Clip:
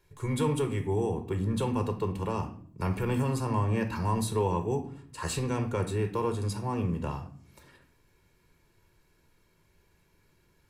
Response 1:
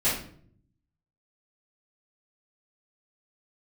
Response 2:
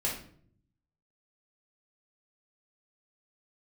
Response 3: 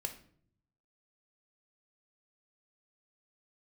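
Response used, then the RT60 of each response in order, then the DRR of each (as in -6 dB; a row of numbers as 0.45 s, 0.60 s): 3; 0.55 s, 0.55 s, 0.60 s; -12.5 dB, -4.5 dB, 5.5 dB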